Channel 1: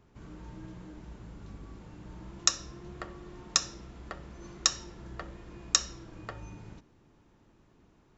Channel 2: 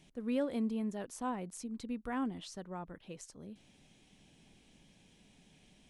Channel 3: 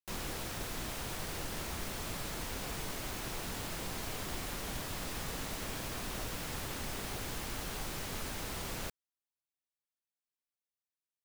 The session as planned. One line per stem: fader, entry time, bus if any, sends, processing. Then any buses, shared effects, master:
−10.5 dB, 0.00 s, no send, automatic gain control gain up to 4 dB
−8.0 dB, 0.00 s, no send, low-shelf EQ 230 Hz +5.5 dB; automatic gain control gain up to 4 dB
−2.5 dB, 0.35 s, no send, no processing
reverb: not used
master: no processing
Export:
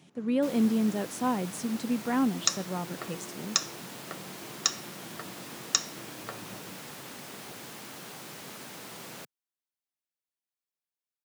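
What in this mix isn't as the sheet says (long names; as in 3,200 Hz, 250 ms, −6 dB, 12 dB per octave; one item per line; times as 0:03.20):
stem 1 −10.5 dB → −2.5 dB
stem 2 −8.0 dB → +3.5 dB
master: extra high-pass filter 140 Hz 24 dB per octave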